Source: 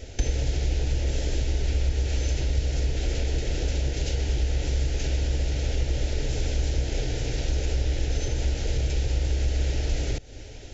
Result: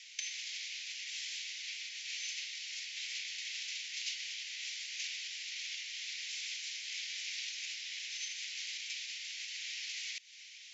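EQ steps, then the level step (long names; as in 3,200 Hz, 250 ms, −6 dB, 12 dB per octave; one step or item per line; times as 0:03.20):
elliptic high-pass filter 2,100 Hz, stop band 80 dB
low-pass filter 5,800 Hz 12 dB per octave
+1.0 dB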